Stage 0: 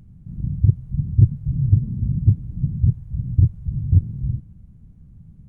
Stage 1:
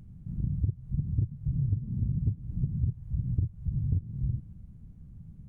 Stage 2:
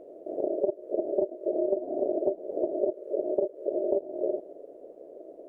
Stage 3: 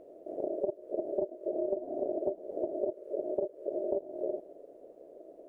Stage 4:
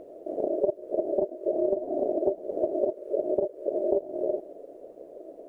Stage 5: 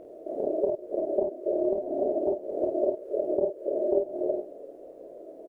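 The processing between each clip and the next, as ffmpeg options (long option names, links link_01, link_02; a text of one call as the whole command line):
ffmpeg -i in.wav -af "acompressor=threshold=-22dB:ratio=10,volume=-2.5dB" out.wav
ffmpeg -i in.wav -af "aeval=exprs='val(0)*sin(2*PI*490*n/s)':channel_layout=same,volume=3.5dB" out.wav
ffmpeg -i in.wav -af "equalizer=frequency=420:width=0.66:gain=-6" out.wav
ffmpeg -i in.wav -af "aphaser=in_gain=1:out_gain=1:delay=4.6:decay=0.22:speed=1.2:type=triangular,volume=6.5dB" out.wav
ffmpeg -i in.wav -af "aecho=1:1:28|50:0.501|0.596,volume=-2dB" out.wav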